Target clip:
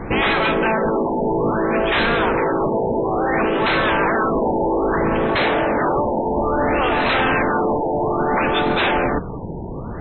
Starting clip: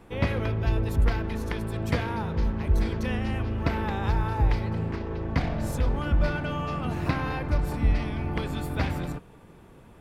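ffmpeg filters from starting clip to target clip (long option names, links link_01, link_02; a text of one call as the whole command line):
ffmpeg -i in.wav -af "afftfilt=real='re*lt(hypot(re,im),0.112)':imag='im*lt(hypot(re,im),0.112)':win_size=1024:overlap=0.75,aeval=exprs='0.141*sin(PI/2*5.62*val(0)/0.141)':channel_layout=same,afftfilt=real='re*lt(b*sr/1024,960*pow(4200/960,0.5+0.5*sin(2*PI*0.6*pts/sr)))':imag='im*lt(b*sr/1024,960*pow(4200/960,0.5+0.5*sin(2*PI*0.6*pts/sr)))':win_size=1024:overlap=0.75,volume=3.5dB" out.wav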